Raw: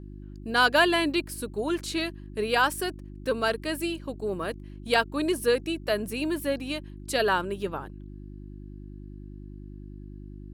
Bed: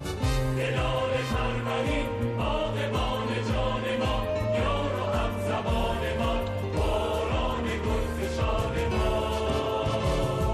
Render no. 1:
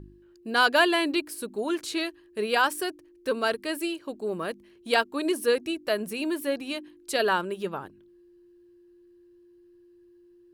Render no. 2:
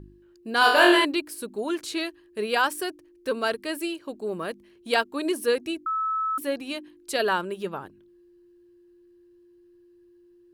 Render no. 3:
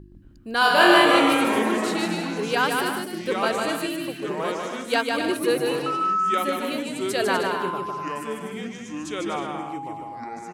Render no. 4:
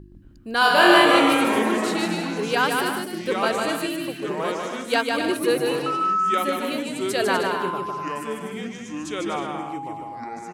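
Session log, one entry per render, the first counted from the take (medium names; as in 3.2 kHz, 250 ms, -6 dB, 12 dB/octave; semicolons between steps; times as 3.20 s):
de-hum 50 Hz, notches 6
0.59–1.05 s: flutter echo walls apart 3.9 m, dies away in 0.62 s; 5.86–6.38 s: bleep 1.3 kHz -23.5 dBFS
ever faster or slower copies 120 ms, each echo -4 st, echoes 3, each echo -6 dB; on a send: bouncing-ball echo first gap 150 ms, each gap 0.65×, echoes 5
trim +1 dB; peak limiter -2 dBFS, peak gain reduction 1.5 dB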